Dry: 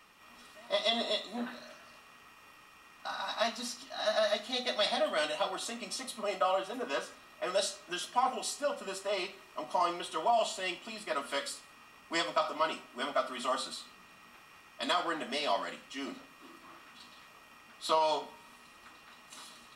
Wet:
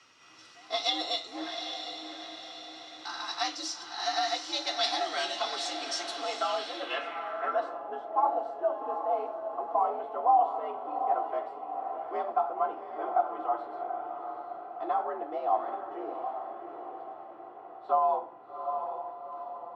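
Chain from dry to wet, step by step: frequency shift +77 Hz; echo that smears into a reverb 777 ms, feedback 51%, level -6.5 dB; low-pass sweep 5.7 kHz -> 800 Hz, 6.43–7.90 s; trim -1.5 dB

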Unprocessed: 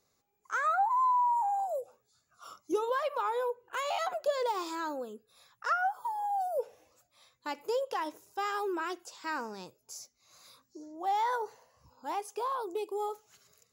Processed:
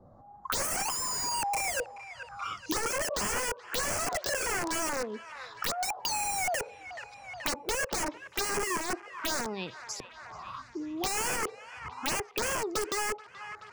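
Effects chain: LFO low-pass saw up 0.7 Hz 440–5600 Hz; integer overflow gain 29.5 dB; touch-sensitive phaser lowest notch 420 Hz, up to 3.8 kHz, full sweep at -31.5 dBFS; feedback echo behind a band-pass 429 ms, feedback 39%, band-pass 1.6 kHz, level -16 dB; three bands compressed up and down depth 70%; trim +6 dB

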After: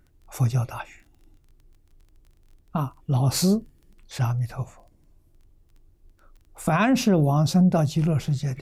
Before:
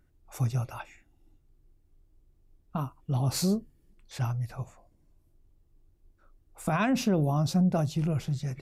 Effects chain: crackle 16 per s -50 dBFS; trim +6 dB

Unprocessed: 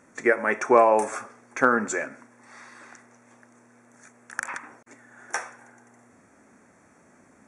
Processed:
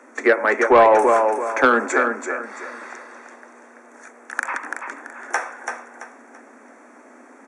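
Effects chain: in parallel at -2 dB: compression, threshold -34 dBFS, peak gain reduction 20.5 dB; on the sum: steep high-pass 230 Hz 96 dB/octave; treble shelf 2.7 kHz -12 dB; on a send: feedback delay 335 ms, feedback 31%, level -6 dB; on the sum: saturation -11.5 dBFS, distortion -17 dB; bass shelf 370 Hz -6.5 dB; trim +8.5 dB

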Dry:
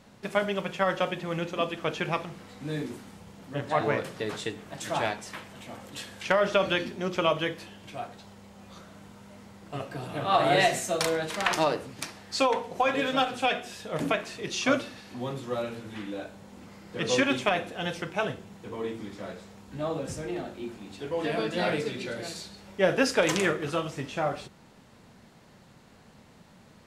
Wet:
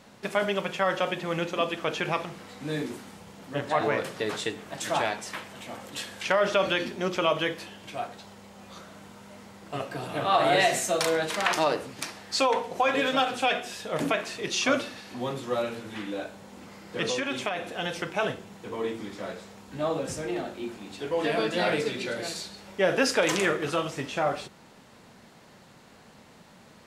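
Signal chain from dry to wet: bass shelf 180 Hz -8.5 dB; in parallel at +2 dB: peak limiter -21 dBFS, peak gain reduction 11.5 dB; 17.04–17.96 s: on the sum: compression, threshold -23 dBFS, peak gain reduction 7 dB; trim -3 dB

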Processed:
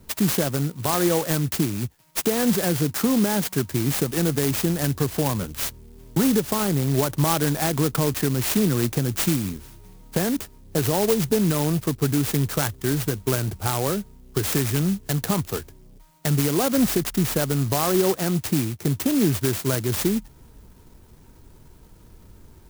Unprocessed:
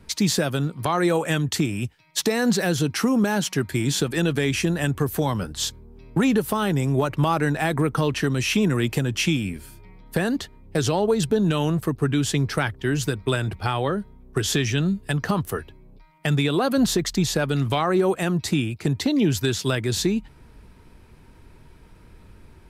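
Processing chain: sampling jitter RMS 0.12 ms

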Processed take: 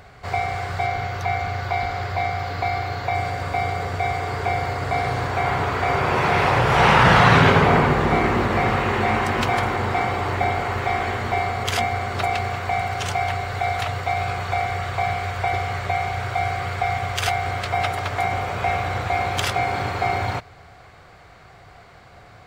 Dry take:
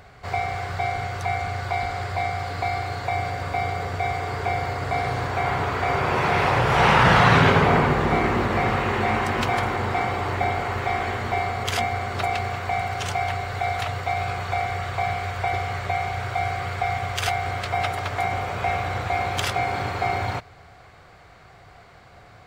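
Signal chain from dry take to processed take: 0.86–3.15 s: peaking EQ 8.8 kHz -13 dB 0.39 oct; trim +2 dB

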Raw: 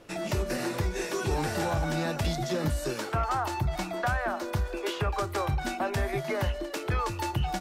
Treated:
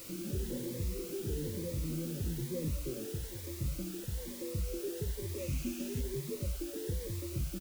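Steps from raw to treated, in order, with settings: 2.74–3.23 s: hum notches 60/120/180/240/300/360/420/480/540 Hz; feedback delay 72 ms, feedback 32%, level -17.5 dB; spectral gate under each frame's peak -20 dB strong; saturation -27.5 dBFS, distortion -13 dB; 0.76–1.30 s: static phaser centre 2.1 kHz, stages 4; peak limiter -30.5 dBFS, peak gain reduction 3 dB; FFT band-reject 580–9000 Hz; word length cut 8-bit, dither triangular; 5.38–6.01 s: graphic EQ with 31 bands 250 Hz +8 dB, 400 Hz -4 dB, 2.5 kHz +10 dB, 6.3 kHz +4 dB; Shepard-style phaser rising 1.1 Hz

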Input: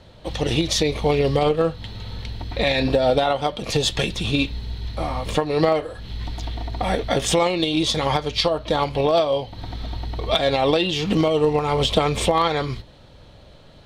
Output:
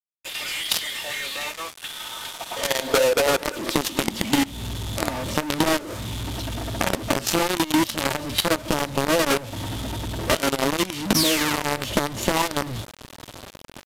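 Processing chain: high-pass sweep 2.4 kHz -> 130 Hz, 1.69–4.65 s; in parallel at -10.5 dB: hard clipper -16 dBFS, distortion -9 dB; on the sum: peak limiter -9 dBFS, peak gain reduction 7 dB; high-order bell 2.5 kHz -8.5 dB 1.2 oct; comb 3.3 ms, depth 73%; painted sound fall, 11.14–11.64 s, 880–7400 Hz -20 dBFS; companded quantiser 2-bit; formant shift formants -3 st; resampled via 32 kHz; compression 5:1, threshold -14 dBFS, peak gain reduction 11.5 dB; trim -3 dB

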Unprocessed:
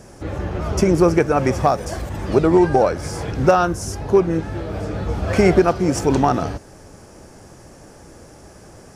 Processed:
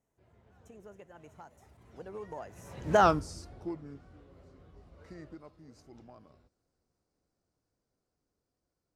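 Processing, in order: Doppler pass-by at 3.05 s, 53 m/s, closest 3.2 m; trim -4.5 dB

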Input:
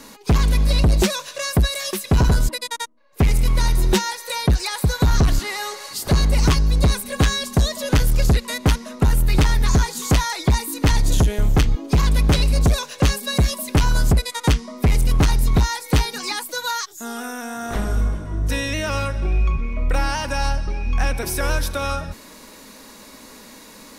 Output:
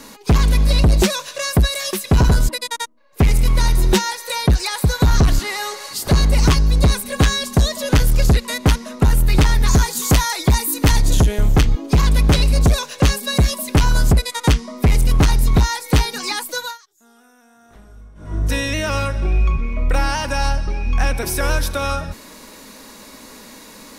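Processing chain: 9.67–10.99 s: treble shelf 10 kHz +10 dB; 16.57–18.36 s: dip -24 dB, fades 0.21 s; trim +2.5 dB

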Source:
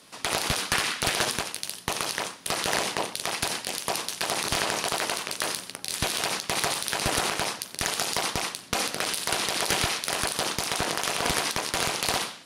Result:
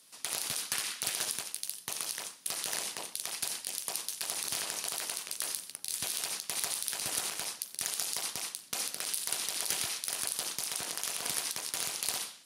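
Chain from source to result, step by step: high-pass 100 Hz; pre-emphasis filter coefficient 0.8; trim -3 dB

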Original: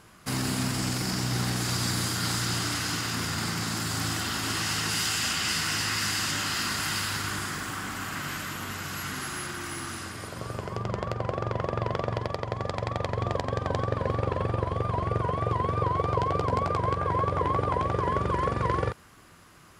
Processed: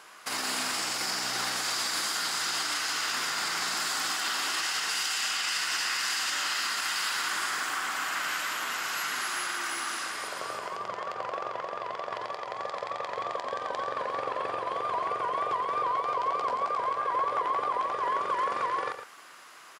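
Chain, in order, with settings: high-pass 670 Hz 12 dB/octave; peaking EQ 13 kHz -5 dB 1 oct; in parallel at 0 dB: compression, threshold -37 dBFS, peak gain reduction 11 dB; on the sum: peak limiter -21 dBFS, peak gain reduction 10 dB; delay 113 ms -9 dB

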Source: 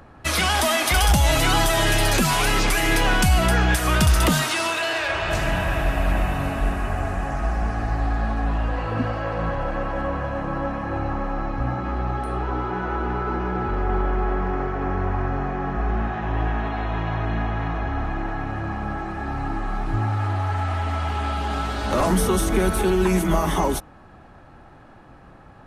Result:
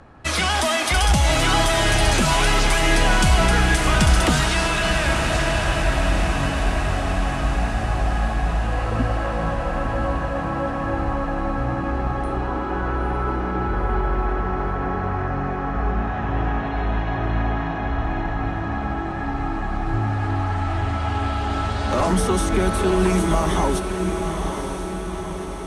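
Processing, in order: low-pass 10 kHz 24 dB/octave; echo that smears into a reverb 953 ms, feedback 59%, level -6 dB

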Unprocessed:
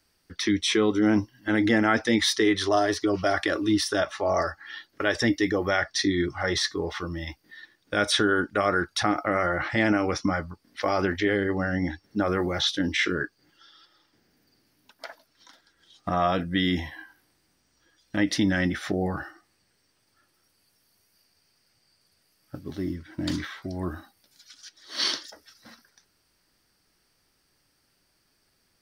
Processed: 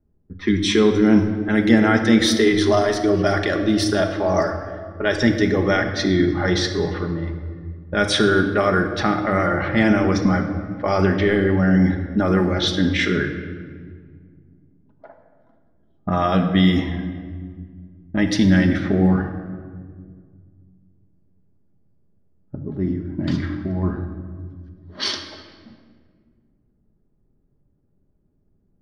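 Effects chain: level-controlled noise filter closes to 410 Hz, open at -20 dBFS; bass shelf 270 Hz +8.5 dB; simulated room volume 2700 m³, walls mixed, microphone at 1.3 m; trim +2 dB

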